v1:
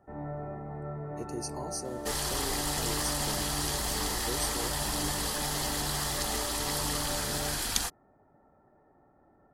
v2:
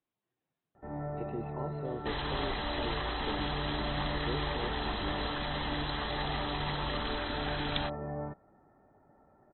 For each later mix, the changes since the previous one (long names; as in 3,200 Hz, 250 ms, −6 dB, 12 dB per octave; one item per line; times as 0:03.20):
first sound: entry +0.75 s
master: add linear-phase brick-wall low-pass 4,100 Hz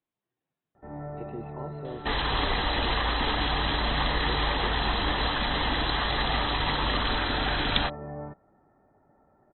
second sound +9.0 dB